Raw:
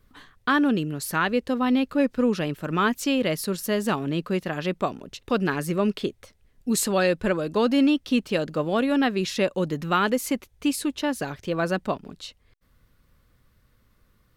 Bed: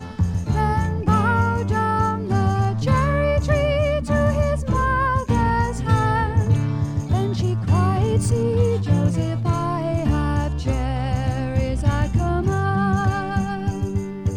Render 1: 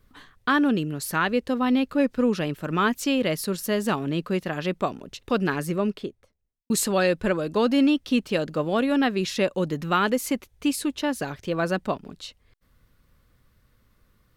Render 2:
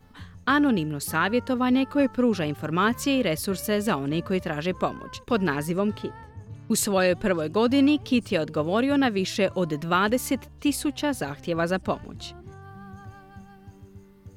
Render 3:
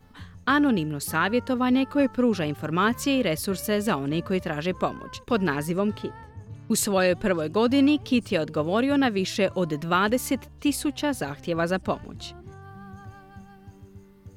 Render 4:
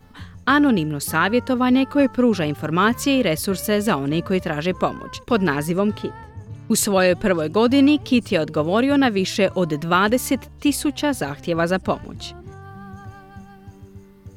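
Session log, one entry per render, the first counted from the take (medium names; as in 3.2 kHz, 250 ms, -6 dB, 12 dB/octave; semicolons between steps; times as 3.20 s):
5.51–6.70 s: studio fade out
add bed -23.5 dB
no audible change
trim +5 dB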